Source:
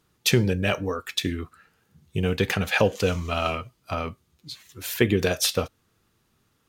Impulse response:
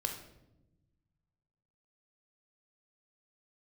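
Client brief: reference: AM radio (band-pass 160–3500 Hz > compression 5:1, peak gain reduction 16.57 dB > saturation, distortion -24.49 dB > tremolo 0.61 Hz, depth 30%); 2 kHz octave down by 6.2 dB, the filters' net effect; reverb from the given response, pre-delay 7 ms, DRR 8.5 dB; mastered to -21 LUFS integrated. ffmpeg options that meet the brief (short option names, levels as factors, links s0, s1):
-filter_complex "[0:a]equalizer=f=2000:t=o:g=-7.5,asplit=2[s0][s1];[1:a]atrim=start_sample=2205,adelay=7[s2];[s1][s2]afir=irnorm=-1:irlink=0,volume=0.299[s3];[s0][s3]amix=inputs=2:normalize=0,highpass=160,lowpass=3500,acompressor=threshold=0.0224:ratio=5,asoftclip=threshold=0.0891,tremolo=f=0.61:d=0.3,volume=8.91"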